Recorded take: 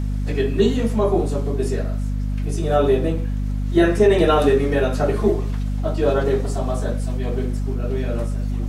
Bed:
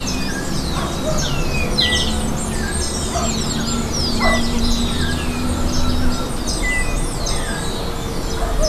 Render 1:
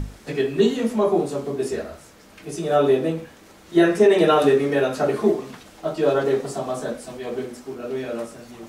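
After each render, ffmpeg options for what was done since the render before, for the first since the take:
ffmpeg -i in.wav -af "bandreject=frequency=50:width_type=h:width=6,bandreject=frequency=100:width_type=h:width=6,bandreject=frequency=150:width_type=h:width=6,bandreject=frequency=200:width_type=h:width=6,bandreject=frequency=250:width_type=h:width=6,bandreject=frequency=300:width_type=h:width=6" out.wav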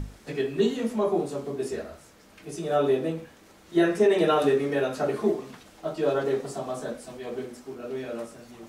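ffmpeg -i in.wav -af "volume=-5.5dB" out.wav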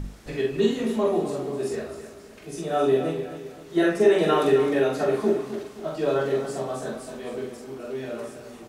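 ffmpeg -i in.wav -filter_complex "[0:a]asplit=2[link_01][link_02];[link_02]adelay=45,volume=-3dB[link_03];[link_01][link_03]amix=inputs=2:normalize=0,aecho=1:1:261|522|783|1044:0.282|0.116|0.0474|0.0194" out.wav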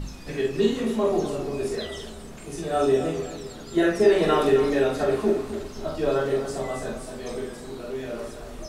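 ffmpeg -i in.wav -i bed.wav -filter_complex "[1:a]volume=-22dB[link_01];[0:a][link_01]amix=inputs=2:normalize=0" out.wav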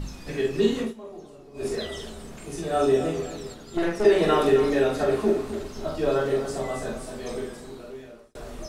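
ffmpeg -i in.wav -filter_complex "[0:a]asettb=1/sr,asplit=3[link_01][link_02][link_03];[link_01]atrim=end=3.544[link_04];[link_02]atrim=start=3.54:end=4.05,asetpts=PTS-STARTPTS,afade=type=in:duration=0.004:curve=qsin,afade=type=out:start_time=0.506:duration=0.004:curve=qsin,aeval=exprs='(tanh(10*val(0)+0.7)-tanh(0.7))/10':channel_layout=same[link_05];[link_03]atrim=start=4.046[link_06];[link_04][link_05]acrossfade=duration=0.004:curve1=hsin:curve2=qsin[link_07];[link_07][link_06]acrossfade=duration=0.004:curve1=qsin:curve2=hsin,asplit=4[link_08][link_09][link_10][link_11];[link_08]atrim=end=0.94,asetpts=PTS-STARTPTS,afade=type=out:start_time=0.81:duration=0.13:silence=0.125893[link_12];[link_09]atrim=start=0.94:end=1.54,asetpts=PTS-STARTPTS,volume=-18dB[link_13];[link_10]atrim=start=1.54:end=8.35,asetpts=PTS-STARTPTS,afade=type=in:duration=0.13:silence=0.125893,afade=type=out:start_time=5.84:duration=0.97[link_14];[link_11]atrim=start=8.35,asetpts=PTS-STARTPTS,afade=type=in:duration=0.004:curve=hsin[link_15];[link_12][link_13][link_14][link_15]concat=n=4:v=0:a=1" out.wav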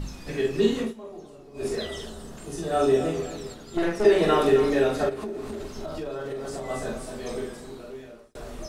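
ffmpeg -i in.wav -filter_complex "[0:a]asettb=1/sr,asplit=3[link_01][link_02][link_03];[link_01]atrim=end=2.064[link_04];[link_02]atrim=start=2.06:end=2.72,asetpts=PTS-STARTPTS,afade=type=in:duration=0.004:curve=qsin,afade=type=out:start_time=0.656:duration=0.004:curve=qsin,equalizer=frequency=2300:width=6:gain=-11[link_05];[link_03]atrim=start=2.716[link_06];[link_04][link_05]acrossfade=duration=0.004:curve1=hsin:curve2=qsin[link_07];[link_07][link_06]acrossfade=duration=0.004:curve1=qsin:curve2=hsin,asplit=3[link_08][link_09][link_10];[link_08]afade=type=out:start_time=5.08:duration=0.02[link_11];[link_09]acompressor=threshold=-29dB:ratio=10:attack=3.2:release=140:knee=1:detection=peak,afade=type=in:start_time=5.08:duration=0.02,afade=type=out:start_time=6.69:duration=0.02[link_12];[link_10]afade=type=in:start_time=6.69:duration=0.02[link_13];[link_11][link_12][link_13]amix=inputs=3:normalize=0" out.wav

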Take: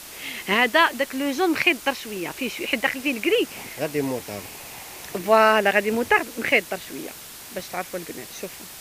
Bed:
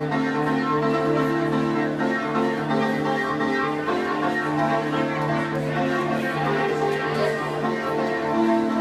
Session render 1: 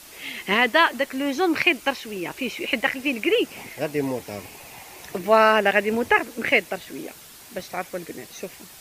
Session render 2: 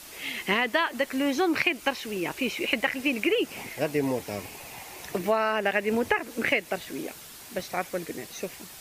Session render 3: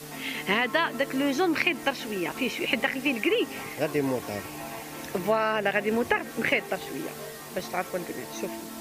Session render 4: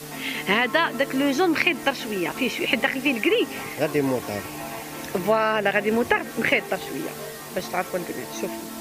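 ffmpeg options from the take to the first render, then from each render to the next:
ffmpeg -i in.wav -af "afftdn=noise_reduction=6:noise_floor=-41" out.wav
ffmpeg -i in.wav -af "acompressor=threshold=-20dB:ratio=12" out.wav
ffmpeg -i in.wav -i bed.wav -filter_complex "[1:a]volume=-18dB[link_01];[0:a][link_01]amix=inputs=2:normalize=0" out.wav
ffmpeg -i in.wav -af "volume=4dB" out.wav

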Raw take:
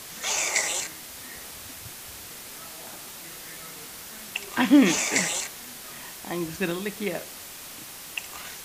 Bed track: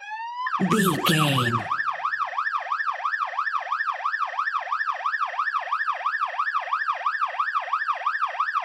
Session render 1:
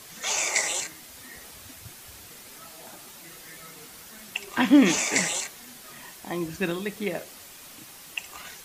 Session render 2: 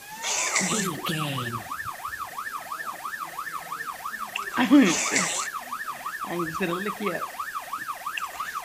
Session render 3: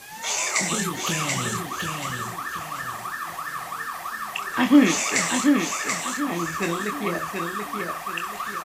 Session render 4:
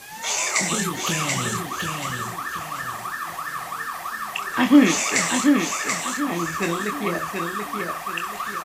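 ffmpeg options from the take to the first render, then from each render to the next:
ffmpeg -i in.wav -af "afftdn=noise_reduction=6:noise_floor=-42" out.wav
ffmpeg -i in.wav -i bed.wav -filter_complex "[1:a]volume=-8dB[link_01];[0:a][link_01]amix=inputs=2:normalize=0" out.wav
ffmpeg -i in.wav -filter_complex "[0:a]asplit=2[link_01][link_02];[link_02]adelay=24,volume=-7.5dB[link_03];[link_01][link_03]amix=inputs=2:normalize=0,asplit=2[link_04][link_05];[link_05]aecho=0:1:733|1466|2199|2932:0.596|0.203|0.0689|0.0234[link_06];[link_04][link_06]amix=inputs=2:normalize=0" out.wav
ffmpeg -i in.wav -af "volume=1.5dB" out.wav

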